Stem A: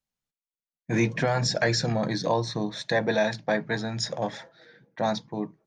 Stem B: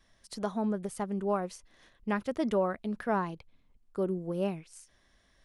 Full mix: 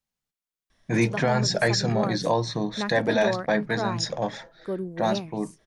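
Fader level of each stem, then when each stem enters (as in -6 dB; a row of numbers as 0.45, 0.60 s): +1.5, +0.5 dB; 0.00, 0.70 s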